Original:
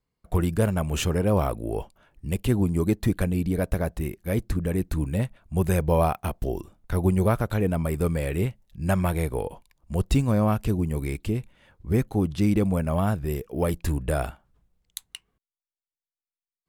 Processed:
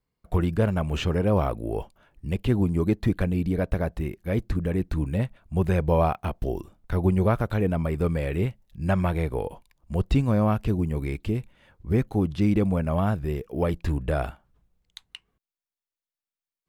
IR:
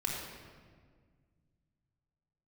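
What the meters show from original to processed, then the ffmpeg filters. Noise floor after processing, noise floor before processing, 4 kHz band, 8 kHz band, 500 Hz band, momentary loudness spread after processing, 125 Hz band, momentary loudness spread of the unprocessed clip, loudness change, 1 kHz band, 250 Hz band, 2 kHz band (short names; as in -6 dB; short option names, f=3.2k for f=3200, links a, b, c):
under -85 dBFS, under -85 dBFS, -2.0 dB, under -10 dB, 0.0 dB, 9 LU, 0.0 dB, 10 LU, 0.0 dB, 0.0 dB, 0.0 dB, -0.5 dB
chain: -filter_complex "[0:a]equalizer=f=9.1k:t=o:w=1.4:g=-3,acrossover=split=5000[a][b];[b]acompressor=threshold=-53dB:ratio=4:attack=1:release=60[c];[a][c]amix=inputs=2:normalize=0"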